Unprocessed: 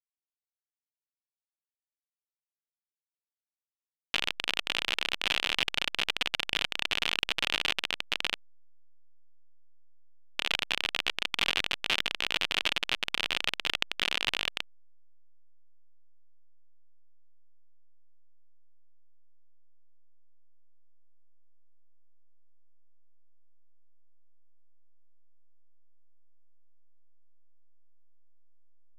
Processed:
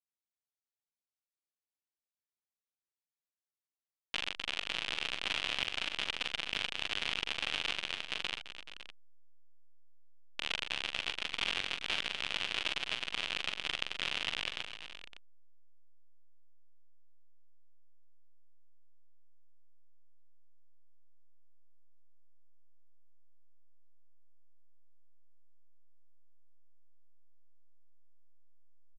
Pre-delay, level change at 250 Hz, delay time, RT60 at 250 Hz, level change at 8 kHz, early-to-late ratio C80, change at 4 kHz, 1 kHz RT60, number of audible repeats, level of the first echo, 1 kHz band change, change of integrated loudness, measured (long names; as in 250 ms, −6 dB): no reverb audible, −6.0 dB, 42 ms, no reverb audible, −6.0 dB, no reverb audible, −6.0 dB, no reverb audible, 4, −7.5 dB, −6.0 dB, −6.0 dB